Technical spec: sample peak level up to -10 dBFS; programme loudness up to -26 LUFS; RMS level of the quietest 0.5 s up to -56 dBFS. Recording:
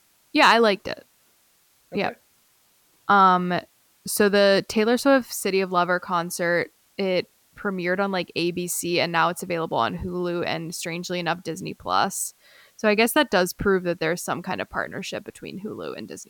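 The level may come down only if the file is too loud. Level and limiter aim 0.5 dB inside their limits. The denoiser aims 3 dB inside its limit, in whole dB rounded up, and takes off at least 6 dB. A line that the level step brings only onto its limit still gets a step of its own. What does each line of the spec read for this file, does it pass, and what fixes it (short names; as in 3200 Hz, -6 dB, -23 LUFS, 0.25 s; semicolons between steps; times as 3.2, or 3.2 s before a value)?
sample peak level -6.0 dBFS: fail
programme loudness -23.0 LUFS: fail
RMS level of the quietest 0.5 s -62 dBFS: OK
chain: gain -3.5 dB; limiter -10.5 dBFS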